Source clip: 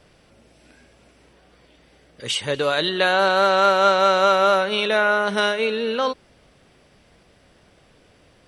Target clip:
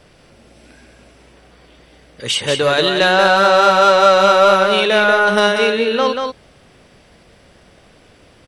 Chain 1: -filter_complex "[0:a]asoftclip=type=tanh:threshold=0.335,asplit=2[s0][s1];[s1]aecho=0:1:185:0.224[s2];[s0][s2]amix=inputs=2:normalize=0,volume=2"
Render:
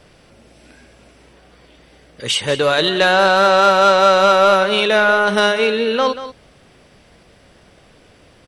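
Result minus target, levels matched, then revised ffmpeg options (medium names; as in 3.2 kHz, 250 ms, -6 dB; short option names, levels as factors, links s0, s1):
echo-to-direct -8 dB
-filter_complex "[0:a]asoftclip=type=tanh:threshold=0.335,asplit=2[s0][s1];[s1]aecho=0:1:185:0.562[s2];[s0][s2]amix=inputs=2:normalize=0,volume=2"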